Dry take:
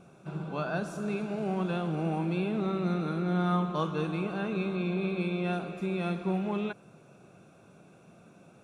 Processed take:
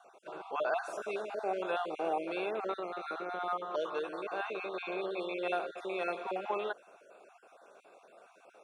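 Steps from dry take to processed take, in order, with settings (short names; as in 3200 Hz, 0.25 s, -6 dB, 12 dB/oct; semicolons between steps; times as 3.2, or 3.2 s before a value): random spectral dropouts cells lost 25%; 2.71–4.74 compressor, threshold -30 dBFS, peak gain reduction 7.5 dB; HPF 490 Hz 24 dB/oct; tilt -2 dB/oct; gain +3.5 dB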